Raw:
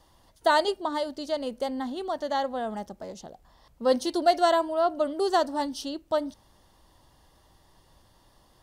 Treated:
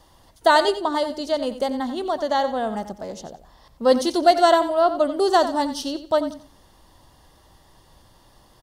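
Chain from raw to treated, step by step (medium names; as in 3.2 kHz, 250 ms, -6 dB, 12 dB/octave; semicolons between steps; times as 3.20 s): feedback delay 90 ms, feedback 24%, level -12 dB; trim +6 dB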